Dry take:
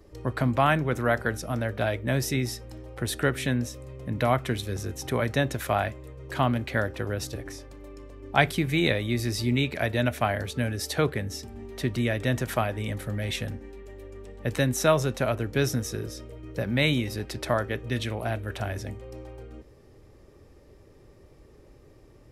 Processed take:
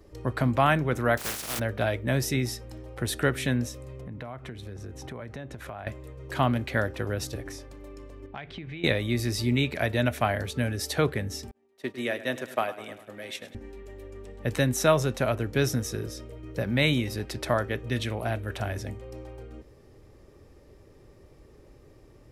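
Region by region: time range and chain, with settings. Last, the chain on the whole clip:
1.17–1.58 spectral contrast lowered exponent 0.18 + overloaded stage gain 27.5 dB
4.01–5.87 LPF 12000 Hz + high shelf 3100 Hz -11 dB + compressor 5:1, threshold -36 dBFS
8.26–8.84 ladder low-pass 4200 Hz, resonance 20% + compressor 16:1, threshold -34 dBFS
11.51–13.55 expander -26 dBFS + HPF 320 Hz + feedback echo 0.102 s, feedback 60%, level -15 dB
whole clip: dry

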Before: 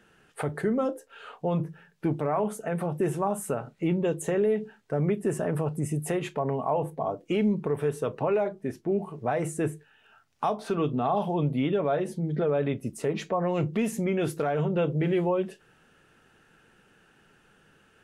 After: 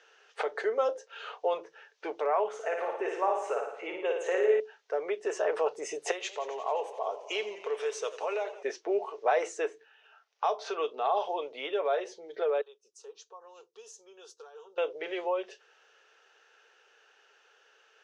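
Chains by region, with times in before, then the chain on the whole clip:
2.48–4.6 resonant high shelf 3200 Hz -7 dB, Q 1.5 + upward compressor, threshold -34 dBFS + flutter echo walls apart 9.6 m, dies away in 0.77 s
6.11–8.63 pre-emphasis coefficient 0.8 + warbling echo 88 ms, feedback 76%, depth 116 cents, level -15 dB
9.65–10.49 LPF 3300 Hz 6 dB/oct + notches 50/100/150/200/250/300/350 Hz
12.61–14.78 pre-emphasis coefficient 0.8 + fixed phaser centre 420 Hz, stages 8 + upward expander, over -57 dBFS
whole clip: Chebyshev band-pass 430–6200 Hz, order 4; high shelf 3800 Hz +9 dB; vocal rider 2 s

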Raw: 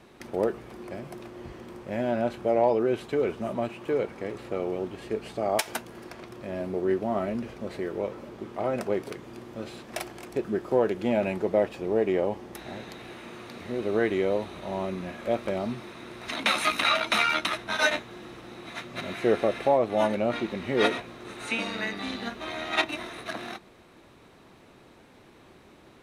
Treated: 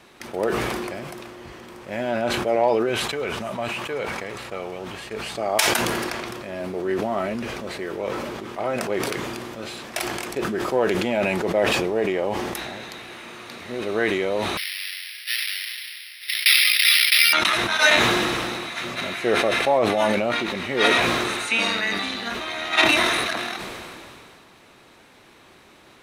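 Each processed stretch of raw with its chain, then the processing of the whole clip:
2.89–5.35 bell 330 Hz -6.5 dB 1.1 oct + expander -42 dBFS
14.57–17.33 half-waves squared off + Chebyshev band-pass 1900–4200 Hz, order 3 + careless resampling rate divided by 6×, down none, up hold
whole clip: tilt shelf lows -5 dB, about 770 Hz; sustainer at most 22 dB/s; gain +3 dB

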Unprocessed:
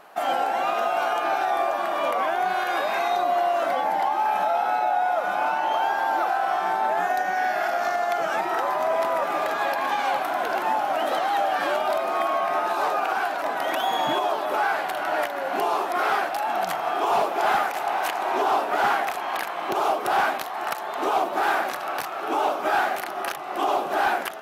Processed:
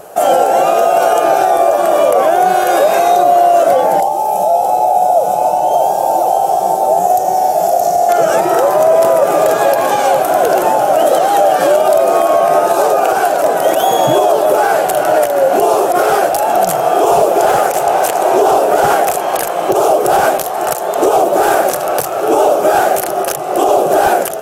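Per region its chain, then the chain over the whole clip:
4–8.09 EQ curve 100 Hz 0 dB, 320 Hz -7 dB, 830 Hz -2 dB, 1500 Hz -21 dB, 2400 Hz -12 dB, 3500 Hz -8 dB, 7700 Hz 0 dB + echo 0.622 s -5 dB
17.46–18.17 HPF 51 Hz 24 dB/oct + Doppler distortion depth 0.17 ms
whole clip: ten-band EQ 125 Hz +7 dB, 250 Hz -10 dB, 500 Hz +7 dB, 1000 Hz -11 dB, 2000 Hz -12 dB, 4000 Hz -10 dB, 8000 Hz +6 dB; maximiser +20.5 dB; gain -1 dB

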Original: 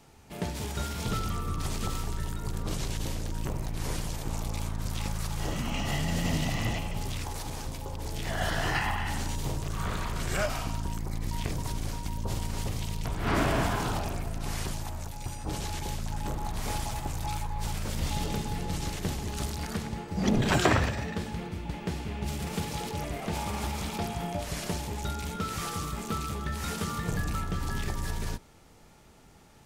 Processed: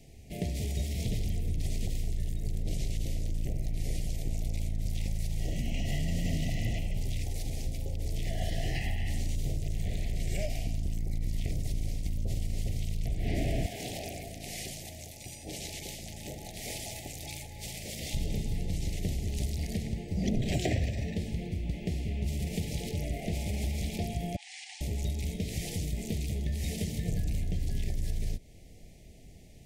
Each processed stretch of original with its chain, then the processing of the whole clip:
13.66–18.14 HPF 580 Hz 6 dB/oct + echo with dull and thin repeats by turns 0.171 s, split 1200 Hz, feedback 61%, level -10 dB
24.36–24.81 brick-wall FIR band-pass 730–9800 Hz + high shelf 4700 Hz -11 dB
whole clip: elliptic band-stop 700–2000 Hz, stop band 50 dB; low shelf 120 Hz +9.5 dB; compressor 2:1, threshold -31 dBFS

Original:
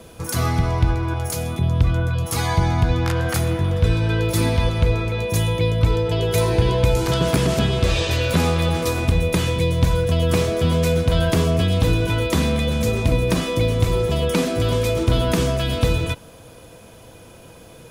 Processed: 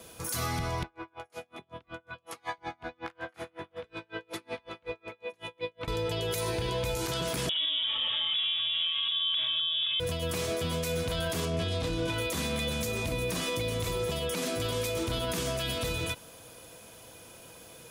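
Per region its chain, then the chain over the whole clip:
0.83–5.88 steep low-pass 12000 Hz + three-band isolator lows -18 dB, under 250 Hz, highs -18 dB, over 3100 Hz + dB-linear tremolo 5.4 Hz, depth 38 dB
7.49–10 HPF 190 Hz 24 dB/oct + tilt -3.5 dB/oct + inverted band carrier 3600 Hz
11.45–12.14 air absorption 60 m + doubler 24 ms -4 dB
whole clip: tilt +2 dB/oct; limiter -16.5 dBFS; gain -6 dB

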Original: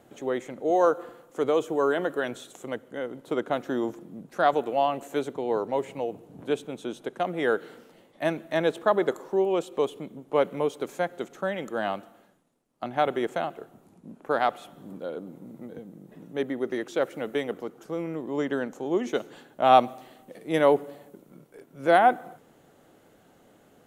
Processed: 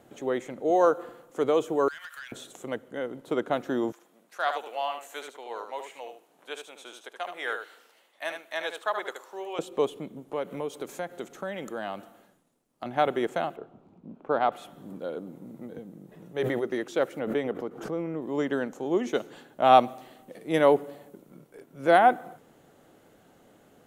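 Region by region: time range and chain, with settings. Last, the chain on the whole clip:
1.88–2.32 HPF 1500 Hz 24 dB/oct + compressor 12:1, threshold -42 dBFS + sample leveller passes 2
3.92–9.59 Bessel high-pass 1200 Hz + echo 75 ms -7 dB
10.16–12.86 high shelf 5500 Hz +4 dB + compressor 2:1, threshold -33 dBFS
13.56–14.52 LPF 2800 Hz + bell 1800 Hz -7.5 dB 0.5 oct
16.09–16.65 bell 260 Hz -15 dB 0.25 oct + sustainer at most 23 dB/s
17.19–18.22 high shelf 3200 Hz -11.5 dB + backwards sustainer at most 83 dB/s
whole clip: dry

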